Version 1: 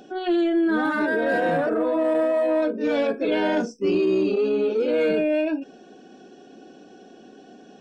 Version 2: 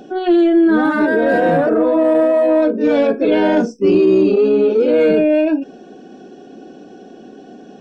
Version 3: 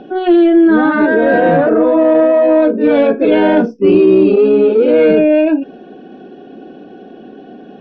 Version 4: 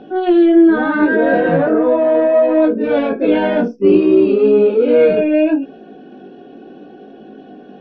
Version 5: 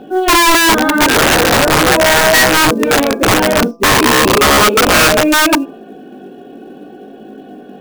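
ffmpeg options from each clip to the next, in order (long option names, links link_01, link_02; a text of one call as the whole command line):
ffmpeg -i in.wav -af "tiltshelf=frequency=970:gain=3.5,volume=6.5dB" out.wav
ffmpeg -i in.wav -af "lowpass=frequency=3600:width=0.5412,lowpass=frequency=3600:width=1.3066,volume=3.5dB" out.wav
ffmpeg -i in.wav -af "flanger=delay=18.5:depth=2.5:speed=0.69" out.wav
ffmpeg -i in.wav -af "acrusher=bits=8:mode=log:mix=0:aa=0.000001,aeval=exprs='(mod(2.66*val(0)+1,2)-1)/2.66':channel_layout=same,bandreject=frequency=168.9:width_type=h:width=4,bandreject=frequency=337.8:width_type=h:width=4,bandreject=frequency=506.7:width_type=h:width=4,bandreject=frequency=675.6:width_type=h:width=4,bandreject=frequency=844.5:width_type=h:width=4,bandreject=frequency=1013.4:width_type=h:width=4,bandreject=frequency=1182.3:width_type=h:width=4,volume=4dB" out.wav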